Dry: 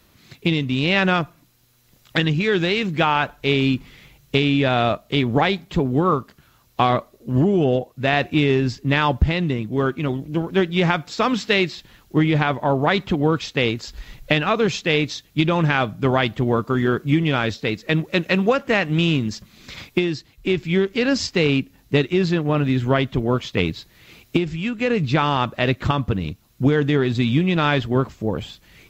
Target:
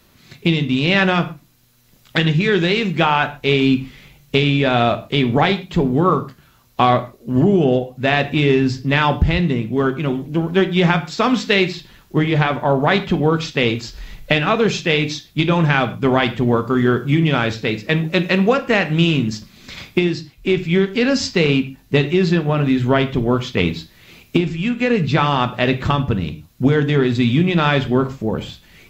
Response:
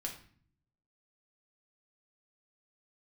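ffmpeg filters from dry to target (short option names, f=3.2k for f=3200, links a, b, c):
-filter_complex "[0:a]asplit=2[a][b];[1:a]atrim=start_sample=2205,afade=t=out:st=0.2:d=0.01,atrim=end_sample=9261[c];[b][c]afir=irnorm=-1:irlink=0,volume=-0.5dB[d];[a][d]amix=inputs=2:normalize=0,volume=-2dB"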